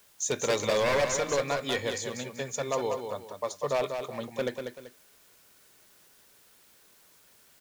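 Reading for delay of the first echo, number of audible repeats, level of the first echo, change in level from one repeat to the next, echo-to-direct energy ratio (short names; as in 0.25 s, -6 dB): 0.192 s, 2, -6.5 dB, -9.5 dB, -6.0 dB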